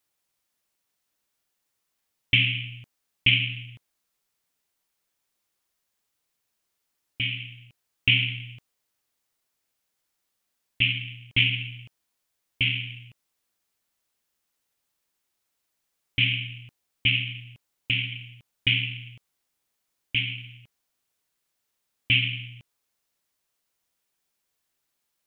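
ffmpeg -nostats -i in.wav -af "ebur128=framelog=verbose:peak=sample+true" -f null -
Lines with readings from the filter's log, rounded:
Integrated loudness:
  I:         -24.5 LUFS
  Threshold: -36.3 LUFS
Loudness range:
  LRA:         7.2 LU
  Threshold: -49.3 LUFS
  LRA low:   -33.6 LUFS
  LRA high:  -26.5 LUFS
Sample peak:
  Peak:       -5.0 dBFS
True peak:
  Peak:       -5.0 dBFS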